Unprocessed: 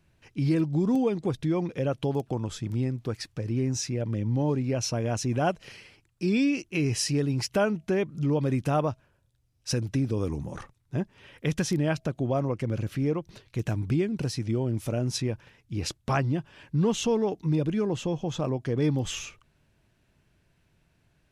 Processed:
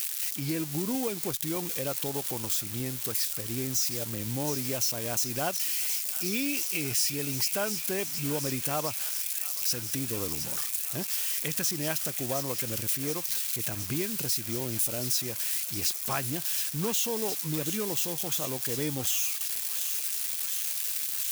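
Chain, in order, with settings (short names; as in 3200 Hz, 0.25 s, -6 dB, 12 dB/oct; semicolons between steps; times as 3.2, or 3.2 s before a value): switching spikes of -24.5 dBFS; tilt +2.5 dB/oct; compressor 2.5:1, threshold -27 dBFS, peak gain reduction 8.5 dB; thin delay 0.718 s, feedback 81%, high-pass 1700 Hz, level -9.5 dB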